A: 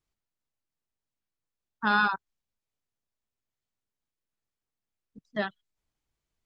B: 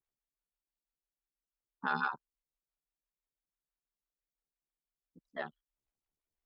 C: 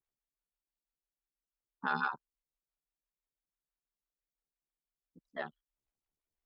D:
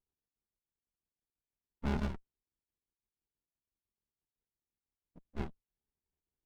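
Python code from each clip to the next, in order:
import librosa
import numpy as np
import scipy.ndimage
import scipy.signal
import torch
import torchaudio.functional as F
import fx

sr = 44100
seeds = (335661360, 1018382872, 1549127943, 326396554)

y1 = x * np.sin(2.0 * np.pi * 36.0 * np.arange(len(x)) / sr)
y1 = fx.stagger_phaser(y1, sr, hz=6.0)
y1 = y1 * 10.0 ** (-4.0 / 20.0)
y2 = y1
y3 = fx.peak_eq(y2, sr, hz=430.0, db=12.5, octaves=0.87)
y3 = fx.running_max(y3, sr, window=65)
y3 = y3 * 10.0 ** (-1.5 / 20.0)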